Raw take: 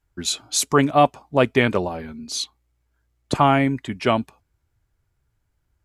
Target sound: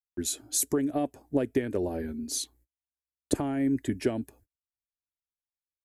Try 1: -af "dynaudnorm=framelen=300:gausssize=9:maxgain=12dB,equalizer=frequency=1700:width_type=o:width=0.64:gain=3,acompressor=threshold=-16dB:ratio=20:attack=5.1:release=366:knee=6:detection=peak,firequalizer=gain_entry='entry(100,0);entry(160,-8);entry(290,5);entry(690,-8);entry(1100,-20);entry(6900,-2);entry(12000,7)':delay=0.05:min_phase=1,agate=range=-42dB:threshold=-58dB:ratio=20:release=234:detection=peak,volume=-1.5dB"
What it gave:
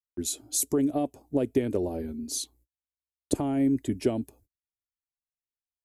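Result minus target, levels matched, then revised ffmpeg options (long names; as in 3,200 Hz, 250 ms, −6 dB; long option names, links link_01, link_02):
2,000 Hz band −6.0 dB
-af "dynaudnorm=framelen=300:gausssize=9:maxgain=12dB,equalizer=frequency=1700:width_type=o:width=0.64:gain=14,acompressor=threshold=-16dB:ratio=20:attack=5.1:release=366:knee=6:detection=peak,firequalizer=gain_entry='entry(100,0);entry(160,-8);entry(290,5);entry(690,-8);entry(1100,-20);entry(6900,-2);entry(12000,7)':delay=0.05:min_phase=1,agate=range=-42dB:threshold=-58dB:ratio=20:release=234:detection=peak,volume=-1.5dB"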